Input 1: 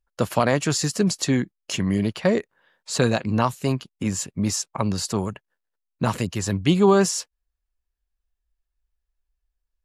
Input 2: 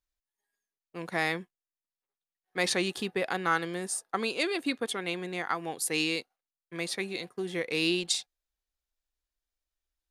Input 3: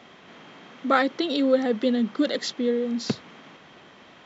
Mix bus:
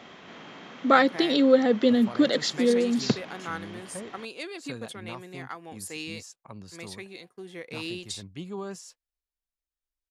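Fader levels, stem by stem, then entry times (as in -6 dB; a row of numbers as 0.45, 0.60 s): -20.0, -8.0, +2.0 dB; 1.70, 0.00, 0.00 s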